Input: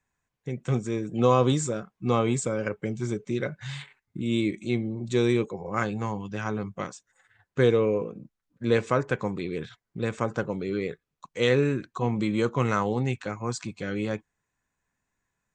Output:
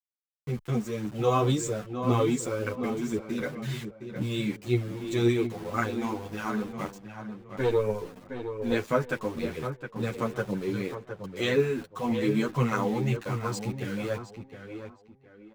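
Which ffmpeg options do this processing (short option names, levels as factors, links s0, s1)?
-filter_complex "[0:a]aeval=exprs='val(0)*gte(abs(val(0)),0.0112)':c=same,aphaser=in_gain=1:out_gain=1:delay=4.7:decay=0.45:speed=1.9:type=triangular,asettb=1/sr,asplit=3[s0][s1][s2];[s0]atrim=end=6.894[s3];[s1]atrim=start=6.89:end=8.72,asetpts=PTS-STARTPTS,afade=t=in:d=0.004:c=qsin,afade=t=out:st=1.826:d=0.004:c=qsin,aeval=exprs='(tanh(4.47*val(0)+0.6)-tanh(0.6))/4.47':c=same[s4];[s2]atrim=start=8.716[s5];[s3][s4]acrossfade=d=0.004:c1=hsin:c2=qsin[s6];[s6][s5]acrossfade=d=0.004:c1=qsin:c2=hsin,asplit=2[s7][s8];[s8]adelay=714,lowpass=f=2800:p=1,volume=0.398,asplit=2[s9][s10];[s10]adelay=714,lowpass=f=2800:p=1,volume=0.26,asplit=2[s11][s12];[s12]adelay=714,lowpass=f=2800:p=1,volume=0.26[s13];[s7][s9][s11][s13]amix=inputs=4:normalize=0,asplit=2[s14][s15];[s15]adelay=9.6,afreqshift=-0.33[s16];[s14][s16]amix=inputs=2:normalize=1"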